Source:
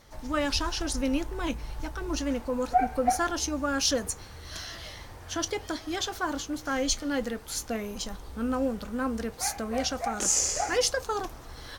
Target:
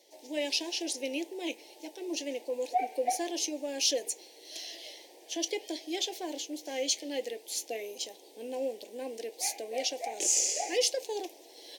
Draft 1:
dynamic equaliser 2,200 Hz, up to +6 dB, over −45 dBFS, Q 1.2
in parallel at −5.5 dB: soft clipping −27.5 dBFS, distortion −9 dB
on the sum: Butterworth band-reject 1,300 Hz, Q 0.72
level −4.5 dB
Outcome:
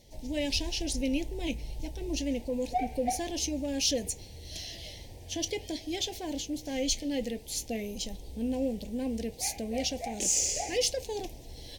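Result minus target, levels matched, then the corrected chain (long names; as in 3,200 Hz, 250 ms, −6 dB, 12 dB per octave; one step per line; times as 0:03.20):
soft clipping: distortion +10 dB; 250 Hz band +6.0 dB
dynamic equaliser 2,200 Hz, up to +6 dB, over −45 dBFS, Q 1.2
elliptic high-pass filter 330 Hz, stop band 80 dB
in parallel at −5.5 dB: soft clipping −17 dBFS, distortion −19 dB
on the sum: Butterworth band-reject 1,300 Hz, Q 0.72
level −4.5 dB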